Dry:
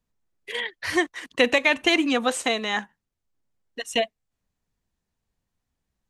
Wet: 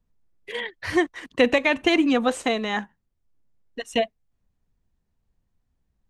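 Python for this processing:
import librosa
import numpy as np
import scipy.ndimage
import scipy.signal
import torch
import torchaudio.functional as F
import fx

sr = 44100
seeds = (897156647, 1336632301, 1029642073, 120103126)

y = fx.tilt_eq(x, sr, slope=-2.0)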